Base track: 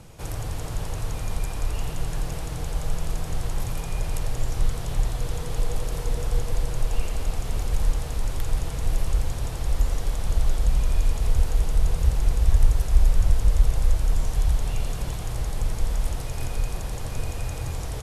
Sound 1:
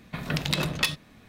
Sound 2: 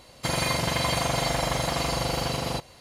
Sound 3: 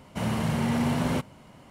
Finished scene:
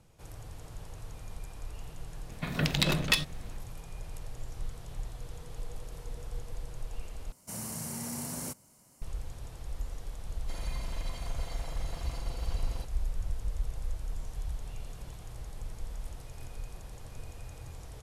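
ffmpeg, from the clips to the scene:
-filter_complex "[0:a]volume=-15dB[a];[1:a]equalizer=f=1.1k:w=1.5:g=-2[b];[3:a]aexciter=amount=11.7:drive=4.3:freq=5k[c];[2:a]alimiter=limit=-20dB:level=0:latency=1:release=110[d];[a]asplit=2[e][f];[e]atrim=end=7.324[g];[c]atrim=end=1.7,asetpts=PTS-STARTPTS,volume=-15dB[h];[f]atrim=start=9.016[i];[b]atrim=end=1.28,asetpts=PTS-STARTPTS,volume=-0.5dB,afade=t=in:d=0.004:c=hsin,afade=t=out:st=1.276:d=0.004:c=hsin,adelay=2290[j];[d]atrim=end=2.8,asetpts=PTS-STARTPTS,volume=-16dB,afade=t=in:d=0.004:c=hsin,afade=t=out:st=2.796:d=0.004:c=hsin,adelay=10250[k];[g][h]acrossfade=d=0.004:c1=hsin:c2=hsin[l];[l][i]acrossfade=d=0.004:c1=hsin:c2=hsin[m];[m][j][k]amix=inputs=3:normalize=0"

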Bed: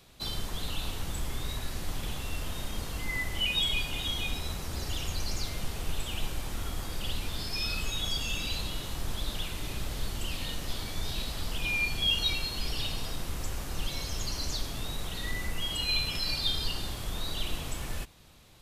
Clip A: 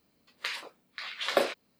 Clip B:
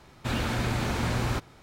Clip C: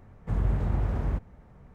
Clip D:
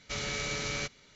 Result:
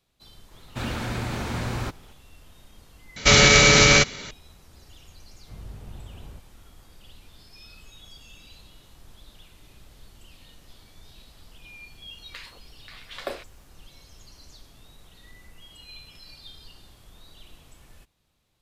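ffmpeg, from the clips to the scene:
-filter_complex "[0:a]volume=-16dB[a];[4:a]alimiter=level_in=24.5dB:limit=-1dB:release=50:level=0:latency=1[b];[a]asplit=2[c][d];[c]atrim=end=3.164[e];[b]atrim=end=1.15,asetpts=PTS-STARTPTS,volume=-3dB[f];[d]atrim=start=4.306[g];[2:a]atrim=end=1.62,asetpts=PTS-STARTPTS,volume=-1.5dB,afade=t=in:d=0.004:c=hsin,afade=t=out:st=1.616:d=0.004:c=hsin,adelay=510[h];[3:a]atrim=end=1.74,asetpts=PTS-STARTPTS,volume=-15dB,afade=t=in:d=0.004:c=hsin,afade=t=out:st=1.736:d=0.004:c=hsin,adelay=229761S[i];[1:a]atrim=end=1.79,asetpts=PTS-STARTPTS,volume=-7.5dB,afade=t=in:d=0.004:c=hsin,afade=t=out:st=1.786:d=0.004:c=hsin,adelay=11900[j];[e][f]acrossfade=d=0.004:c1=hsin:c2=hsin[k];[k][g]acrossfade=d=0.004:c1=hsin:c2=hsin[l];[l][h][i][j]amix=inputs=4:normalize=0"

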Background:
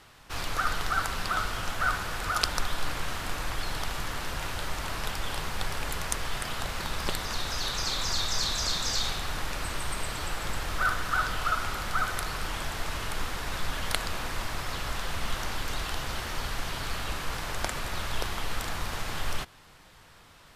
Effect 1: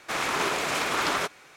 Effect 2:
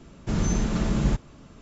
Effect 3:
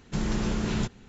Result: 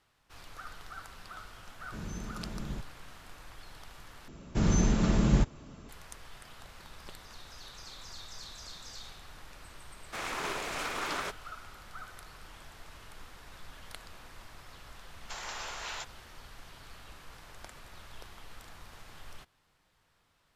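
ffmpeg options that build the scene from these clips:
-filter_complex "[2:a]asplit=2[a][b];[0:a]volume=-17.5dB[c];[3:a]highpass=f=700:w=0.5412,highpass=f=700:w=1.3066[d];[c]asplit=2[e][f];[e]atrim=end=4.284[g];[b]atrim=end=1.61,asetpts=PTS-STARTPTS,volume=-1dB[h];[f]atrim=start=5.886[i];[a]atrim=end=1.61,asetpts=PTS-STARTPTS,volume=-16dB,afade=t=in:d=0.004:c=hsin,afade=t=out:st=1.606:d=0.004:c=hsin,adelay=1650[j];[1:a]atrim=end=1.56,asetpts=PTS-STARTPTS,volume=-9dB,afade=t=in:d=0.004:c=hsin,afade=t=out:st=1.556:d=0.004:c=hsin,adelay=10040[k];[d]atrim=end=1.08,asetpts=PTS-STARTPTS,volume=-2dB,afade=t=in:d=0.004:c=hsin,afade=t=out:st=1.076:d=0.004:c=hsin,adelay=15170[l];[g][h]acrossfade=d=0.004:c1=hsin:c2=hsin[m];[m][i]acrossfade=d=0.004:c1=hsin:c2=hsin[n];[n][j][k][l]amix=inputs=4:normalize=0"

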